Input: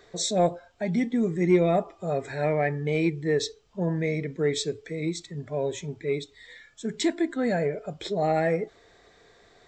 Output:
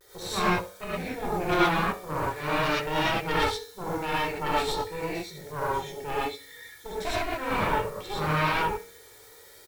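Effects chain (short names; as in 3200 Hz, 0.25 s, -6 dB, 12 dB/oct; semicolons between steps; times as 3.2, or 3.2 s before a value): LPF 3700 Hz 12 dB/oct; low shelf 160 Hz -7.5 dB; resonator 94 Hz, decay 0.68 s, harmonics all, mix 70%; added noise white -63 dBFS; notch 2700 Hz, Q 7.1; comb 2.2 ms, depth 70%; added harmonics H 3 -10 dB, 6 -9 dB, 7 -15 dB, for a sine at -18.5 dBFS; on a send: flutter echo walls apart 11.6 m, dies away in 0.21 s; on the sum: non-linear reverb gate 0.14 s rising, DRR -7.5 dB; vibrato 0.44 Hz 37 cents; gain -1.5 dB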